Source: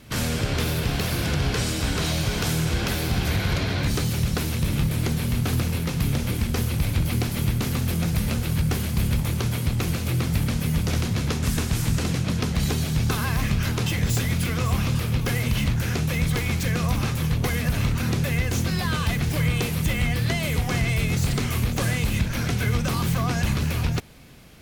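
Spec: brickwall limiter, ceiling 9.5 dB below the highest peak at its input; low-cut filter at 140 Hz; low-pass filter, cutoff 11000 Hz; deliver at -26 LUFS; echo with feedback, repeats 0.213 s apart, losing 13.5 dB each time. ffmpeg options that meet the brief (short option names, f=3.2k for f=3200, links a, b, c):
-af "highpass=140,lowpass=11k,alimiter=limit=-21dB:level=0:latency=1,aecho=1:1:213|426:0.211|0.0444,volume=3.5dB"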